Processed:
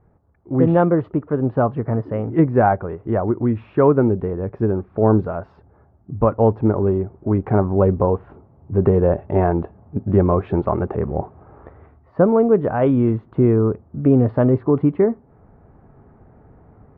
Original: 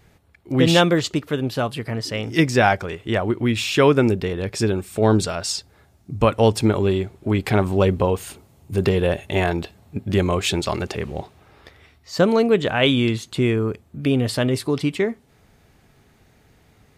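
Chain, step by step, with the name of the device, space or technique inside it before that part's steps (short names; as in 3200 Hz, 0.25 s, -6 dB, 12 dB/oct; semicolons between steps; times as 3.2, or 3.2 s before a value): action camera in a waterproof case (LPF 1200 Hz 24 dB/oct; AGC gain up to 10 dB; gain -2 dB; AAC 64 kbps 48000 Hz)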